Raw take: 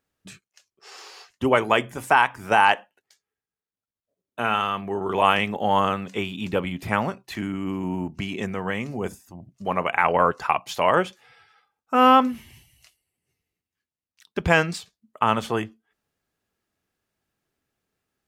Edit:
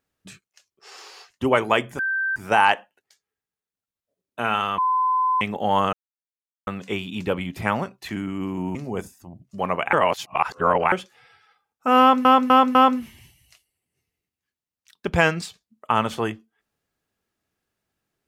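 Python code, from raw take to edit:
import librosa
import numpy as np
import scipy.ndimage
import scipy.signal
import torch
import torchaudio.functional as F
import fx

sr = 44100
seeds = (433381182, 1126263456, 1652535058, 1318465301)

y = fx.edit(x, sr, fx.bleep(start_s=1.99, length_s=0.37, hz=1560.0, db=-21.0),
    fx.bleep(start_s=4.78, length_s=0.63, hz=1020.0, db=-17.5),
    fx.insert_silence(at_s=5.93, length_s=0.74),
    fx.cut(start_s=8.01, length_s=0.81),
    fx.reverse_span(start_s=10.0, length_s=0.99),
    fx.repeat(start_s=12.07, length_s=0.25, count=4), tone=tone)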